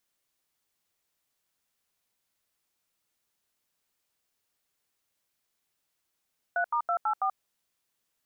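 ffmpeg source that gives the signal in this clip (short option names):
-f lavfi -i "aevalsrc='0.0447*clip(min(mod(t,0.164),0.083-mod(t,0.164))/0.002,0,1)*(eq(floor(t/0.164),0)*(sin(2*PI*697*mod(t,0.164))+sin(2*PI*1477*mod(t,0.164)))+eq(floor(t/0.164),1)*(sin(2*PI*941*mod(t,0.164))+sin(2*PI*1209*mod(t,0.164)))+eq(floor(t/0.164),2)*(sin(2*PI*697*mod(t,0.164))+sin(2*PI*1336*mod(t,0.164)))+eq(floor(t/0.164),3)*(sin(2*PI*852*mod(t,0.164))+sin(2*PI*1336*mod(t,0.164)))+eq(floor(t/0.164),4)*(sin(2*PI*770*mod(t,0.164))+sin(2*PI*1209*mod(t,0.164))))':d=0.82:s=44100"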